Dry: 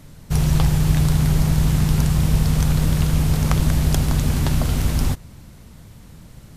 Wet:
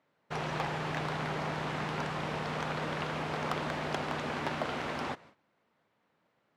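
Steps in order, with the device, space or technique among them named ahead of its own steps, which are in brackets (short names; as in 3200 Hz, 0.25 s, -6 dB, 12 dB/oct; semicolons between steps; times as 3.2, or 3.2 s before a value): walkie-talkie (BPF 510–2200 Hz; hard clip -23 dBFS, distortion -15 dB; gate -53 dBFS, range -18 dB)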